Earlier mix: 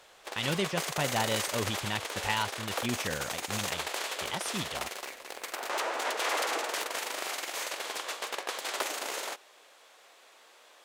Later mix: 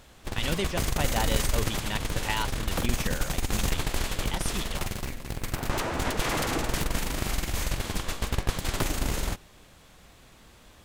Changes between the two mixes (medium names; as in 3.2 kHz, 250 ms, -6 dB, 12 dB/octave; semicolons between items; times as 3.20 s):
background: remove high-pass 450 Hz 24 dB/octave; master: add treble shelf 11 kHz +7.5 dB